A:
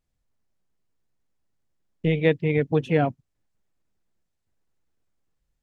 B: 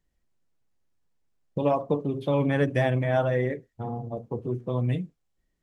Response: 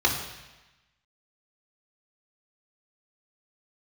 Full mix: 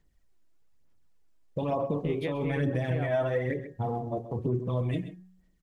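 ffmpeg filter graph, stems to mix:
-filter_complex "[0:a]volume=-7.5dB[link_01];[1:a]bandreject=frequency=184.8:width_type=h:width=4,bandreject=frequency=369.6:width_type=h:width=4,bandreject=frequency=554.4:width_type=h:width=4,bandreject=frequency=739.2:width_type=h:width=4,bandreject=frequency=924:width_type=h:width=4,bandreject=frequency=1108.8:width_type=h:width=4,bandreject=frequency=1293.6:width_type=h:width=4,bandreject=frequency=1478.4:width_type=h:width=4,bandreject=frequency=1663.2:width_type=h:width=4,bandreject=frequency=1848:width_type=h:width=4,alimiter=limit=-22.5dB:level=0:latency=1:release=27,aphaser=in_gain=1:out_gain=1:delay=3.2:decay=0.52:speed=1.1:type=sinusoidal,volume=1.5dB,asplit=3[link_02][link_03][link_04];[link_03]volume=-13dB[link_05];[link_04]apad=whole_len=248118[link_06];[link_01][link_06]sidechaincompress=threshold=-30dB:ratio=8:attack=6.7:release=155[link_07];[link_05]aecho=0:1:131:1[link_08];[link_07][link_02][link_08]amix=inputs=3:normalize=0,alimiter=limit=-19.5dB:level=0:latency=1:release=186"

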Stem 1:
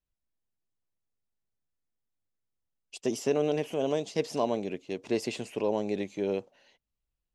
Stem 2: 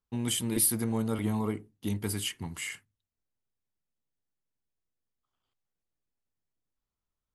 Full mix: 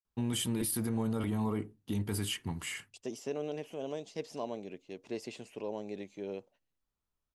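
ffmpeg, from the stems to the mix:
ffmpeg -i stem1.wav -i stem2.wav -filter_complex "[0:a]agate=range=-26dB:threshold=-51dB:ratio=16:detection=peak,volume=-10dB[link_01];[1:a]highshelf=frequency=4400:gain=-5.5,bandreject=frequency=2100:width=16,alimiter=level_in=1.5dB:limit=-24dB:level=0:latency=1:release=17,volume=-1.5dB,adelay=50,volume=1dB[link_02];[link_01][link_02]amix=inputs=2:normalize=0" out.wav

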